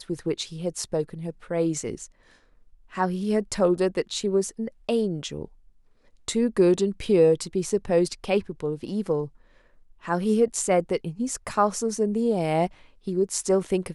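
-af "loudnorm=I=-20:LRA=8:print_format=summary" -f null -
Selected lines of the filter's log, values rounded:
Input Integrated:    -25.4 LUFS
Input True Peak:      -8.5 dBTP
Input LRA:             3.4 LU
Input Threshold:     -36.1 LUFS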